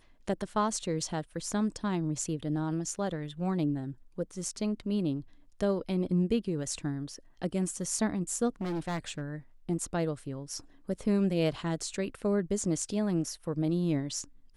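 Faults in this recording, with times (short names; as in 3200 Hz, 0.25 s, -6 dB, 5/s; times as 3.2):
8.61–9.21 clipped -29.5 dBFS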